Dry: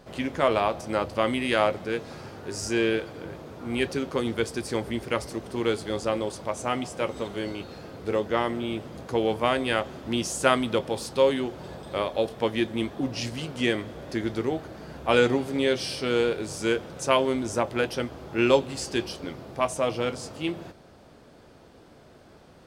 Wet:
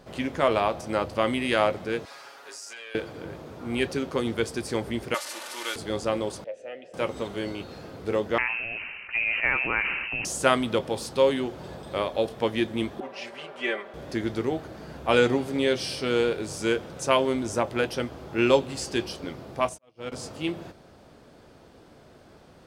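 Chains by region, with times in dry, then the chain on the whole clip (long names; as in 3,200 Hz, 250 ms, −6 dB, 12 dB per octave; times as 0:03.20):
0:02.05–0:02.95: high-pass filter 930 Hz + comb filter 7.2 ms, depth 73% + downward compressor, threshold −38 dBFS
0:05.14–0:05.76: linear delta modulator 64 kbit/s, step −28.5 dBFS + high-pass filter 880 Hz + comb filter 3.4 ms, depth 57%
0:06.44–0:06.94: formant filter e + multiband upward and downward compressor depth 40%
0:08.38–0:10.25: low-shelf EQ 370 Hz −8.5 dB + voice inversion scrambler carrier 2,900 Hz + level that may fall only so fast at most 30 dB per second
0:13.00–0:13.94: three-way crossover with the lows and the highs turned down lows −24 dB, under 440 Hz, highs −17 dB, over 2,700 Hz + comb filter 5.1 ms, depth 95%
0:19.69–0:20.12: volume swells 568 ms + expander for the loud parts 2.5 to 1, over −48 dBFS
whole clip: no processing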